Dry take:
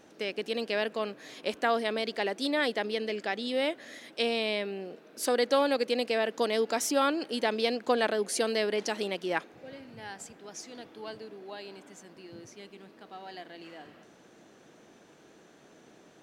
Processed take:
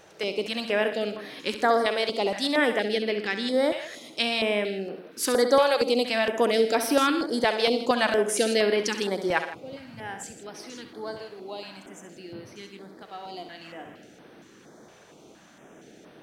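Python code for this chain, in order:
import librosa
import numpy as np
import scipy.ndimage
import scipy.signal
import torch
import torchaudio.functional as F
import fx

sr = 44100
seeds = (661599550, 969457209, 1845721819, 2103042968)

y = fx.echo_multitap(x, sr, ms=(67, 119, 163), db=(-10.0, -16.0, -14.5))
y = fx.filter_held_notch(y, sr, hz=4.3, low_hz=260.0, high_hz=7000.0)
y = y * 10.0 ** (6.0 / 20.0)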